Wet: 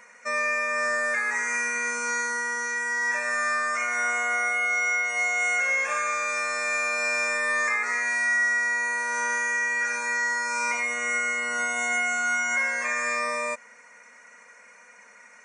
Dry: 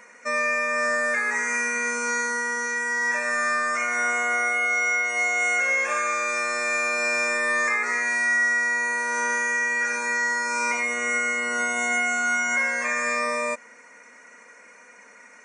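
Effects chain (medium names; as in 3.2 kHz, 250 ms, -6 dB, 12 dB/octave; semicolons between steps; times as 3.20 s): peaking EQ 320 Hz -13 dB 0.69 oct; trim -1.5 dB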